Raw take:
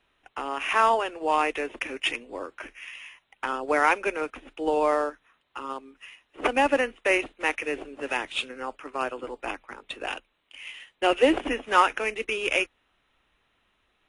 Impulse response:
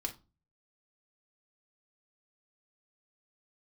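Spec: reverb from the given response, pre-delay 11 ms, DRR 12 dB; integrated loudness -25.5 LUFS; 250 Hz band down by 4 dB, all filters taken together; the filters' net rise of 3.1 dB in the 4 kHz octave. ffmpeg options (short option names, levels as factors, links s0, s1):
-filter_complex "[0:a]equalizer=f=250:t=o:g=-5.5,equalizer=f=4000:t=o:g=5,asplit=2[s0][s1];[1:a]atrim=start_sample=2205,adelay=11[s2];[s1][s2]afir=irnorm=-1:irlink=0,volume=0.237[s3];[s0][s3]amix=inputs=2:normalize=0,volume=1.06"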